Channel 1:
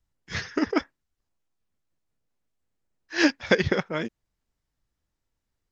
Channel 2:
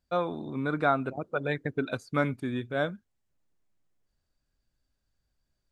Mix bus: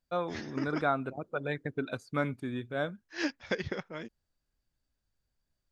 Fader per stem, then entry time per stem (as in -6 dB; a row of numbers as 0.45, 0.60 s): -12.0, -4.0 dB; 0.00, 0.00 s